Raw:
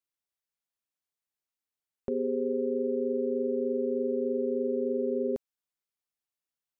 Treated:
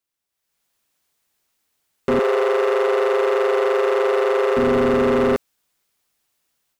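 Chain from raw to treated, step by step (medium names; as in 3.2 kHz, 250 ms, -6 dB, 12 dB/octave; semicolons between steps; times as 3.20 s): level rider gain up to 13 dB; overload inside the chain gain 22.5 dB; 2.19–4.57 s: brick-wall FIR high-pass 360 Hz; trim +7 dB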